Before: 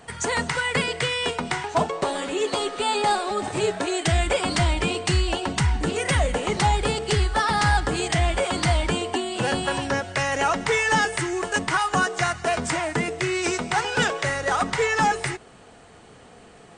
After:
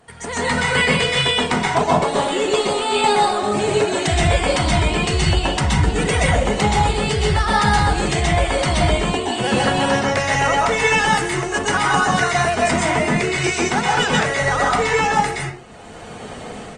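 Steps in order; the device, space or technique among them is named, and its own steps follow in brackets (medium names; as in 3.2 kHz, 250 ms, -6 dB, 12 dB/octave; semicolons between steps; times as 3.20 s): speakerphone in a meeting room (reverberation RT60 0.40 s, pre-delay 117 ms, DRR -3.5 dB; speakerphone echo 120 ms, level -30 dB; level rider gain up to 15 dB; trim -4 dB; Opus 24 kbps 48 kHz)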